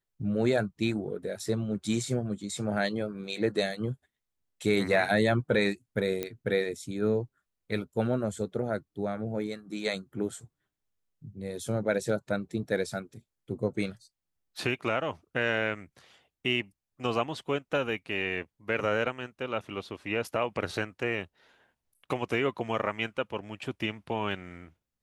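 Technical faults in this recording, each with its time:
6.23 pop -17 dBFS

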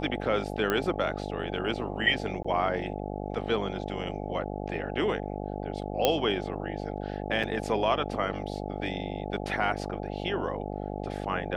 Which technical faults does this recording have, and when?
buzz 50 Hz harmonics 17 -35 dBFS
0.7 pop -13 dBFS
2.43–2.44 gap 15 ms
6.05 pop -8 dBFS
7.43–7.44 gap 5.4 ms

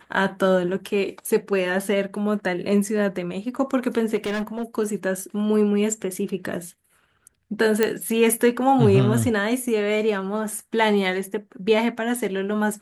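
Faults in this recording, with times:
4.15–4.63 clipped -22.5 dBFS
7.83 pop -6 dBFS

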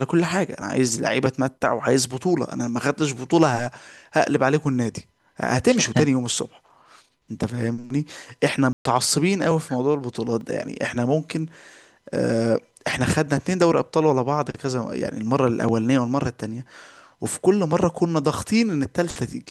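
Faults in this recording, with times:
8.73–8.85 gap 0.123 s
10.41 gap 2.1 ms

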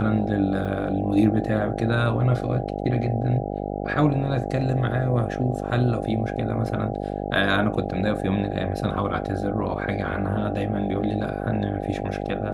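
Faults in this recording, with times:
buzz 50 Hz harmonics 16 -29 dBFS
0.65 gap 2.9 ms

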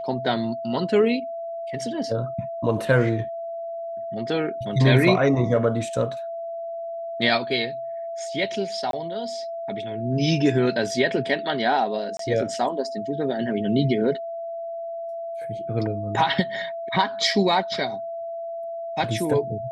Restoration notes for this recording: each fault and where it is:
tone 670 Hz -29 dBFS
8.91–8.93 gap 22 ms
12.17–12.19 gap 23 ms

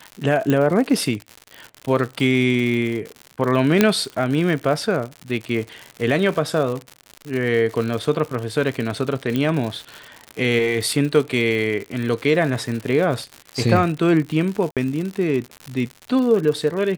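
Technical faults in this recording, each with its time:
crackle 120/s -26 dBFS
0.5 pop -8 dBFS
3.81 pop 0 dBFS
9.36 pop -10 dBFS
14.71–14.77 gap 57 ms

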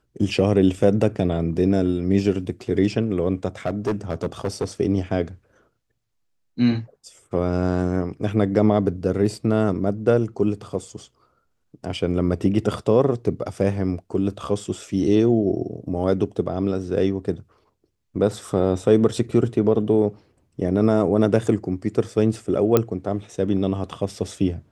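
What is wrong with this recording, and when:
3.65–4.65 clipped -18 dBFS
22.77 pop -4 dBFS

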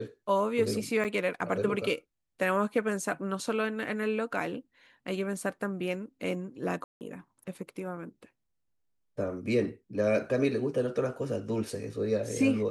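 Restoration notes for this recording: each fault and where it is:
1.04–1.05 gap 7.3 ms
6.84–7.01 gap 0.169 s

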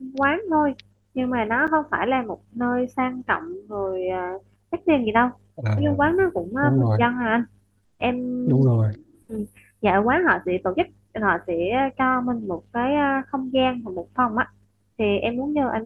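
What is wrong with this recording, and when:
1.67–1.68 gap 7 ms

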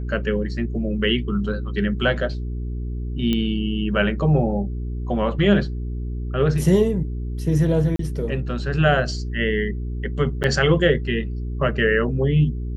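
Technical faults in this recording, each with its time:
hum 60 Hz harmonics 7 -27 dBFS
3.33 pop -11 dBFS
7.96–7.99 gap 33 ms
10.43–10.44 gap 9 ms

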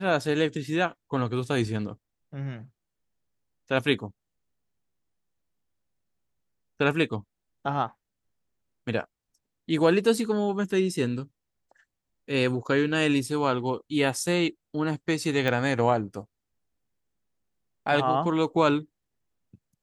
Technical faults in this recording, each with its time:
15.48 pop -14 dBFS

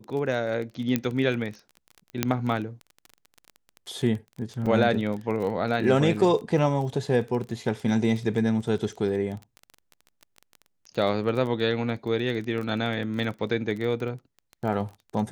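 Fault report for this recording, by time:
crackle 20/s -32 dBFS
0.96 pop -10 dBFS
2.23 pop -6 dBFS
4.66 gap 3.1 ms

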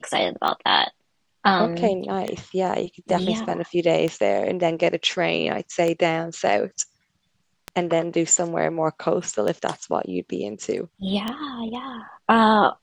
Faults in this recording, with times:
tick 33 1/3 rpm -12 dBFS

